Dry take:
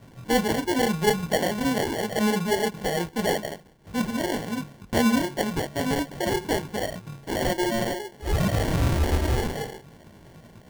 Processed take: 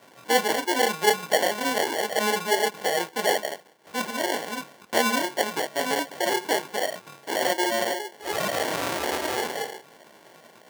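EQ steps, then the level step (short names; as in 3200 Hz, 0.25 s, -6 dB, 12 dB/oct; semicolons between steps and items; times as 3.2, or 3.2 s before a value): HPF 490 Hz 12 dB/oct; +4.0 dB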